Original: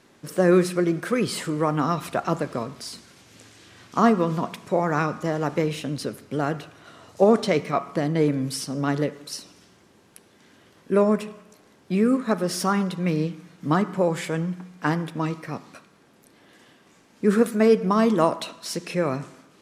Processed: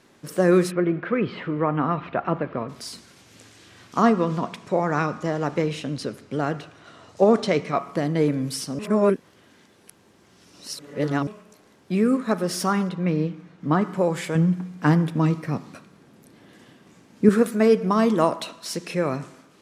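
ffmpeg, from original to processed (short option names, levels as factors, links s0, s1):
-filter_complex "[0:a]asplit=3[s0][s1][s2];[s0]afade=t=out:st=0.7:d=0.02[s3];[s1]lowpass=f=2800:w=0.5412,lowpass=f=2800:w=1.3066,afade=t=in:st=0.7:d=0.02,afade=t=out:st=2.68:d=0.02[s4];[s2]afade=t=in:st=2.68:d=0.02[s5];[s3][s4][s5]amix=inputs=3:normalize=0,asettb=1/sr,asplit=3[s6][s7][s8];[s6]atrim=end=4.024[s9];[s7]atrim=start=4.02:end=7.76,asetpts=PTS-STARTPTS,afade=t=in:d=0.004:c=qsin,afade=t=out:st=3.736:d=0.004:c=qsin,lowpass=8200[s10];[s8]atrim=start=7.756[s11];[s9][s10]acrossfade=d=0.004:c1=hsin:c2=qsin[s12];[s12][s11]acrossfade=d=0.004:c1=qsin:c2=hsin,asettb=1/sr,asplit=3[s13][s14][s15];[s13]atrim=end=12.894[s16];[s14]atrim=start=12.89:end=13.82,asetpts=PTS-STARTPTS,afade=t=in:d=0.004:c=qsin,afade=t=out:st=0.926:d=0.004:c=qsin,aemphasis=mode=reproduction:type=75fm[s17];[s15]atrim=start=13.816[s18];[s16][s17]acrossfade=d=0.004:c1=hsin:c2=qsin[s19];[s19][s18]acrossfade=d=0.004:c1=qsin:c2=hsin,asettb=1/sr,asplit=3[s20][s21][s22];[s20]atrim=end=14.354[s23];[s21]atrim=start=14.35:end=17.29,asetpts=PTS-STARTPTS,afade=t=in:d=0.004:c=qsin,afade=t=out:st=2.936:d=0.004:c=qsin,equalizer=f=140:t=o:w=2.7:g=8.5[s24];[s22]atrim=start=17.286[s25];[s23][s24]acrossfade=d=0.004:c1=hsin:c2=qsin[s26];[s26][s25]acrossfade=d=0.004:c1=qsin:c2=hsin,asplit=3[s27][s28][s29];[s27]atrim=end=8.792[s30];[s28]atrim=start=8.788:end=11.272,asetpts=PTS-STARTPTS,areverse[s31];[s29]atrim=start=11.268[s32];[s30][s31]acrossfade=d=0.004:c1=hsin:c2=hsin[s33];[s33][s32]acrossfade=d=0.004:c1=hsin:c2=hsin"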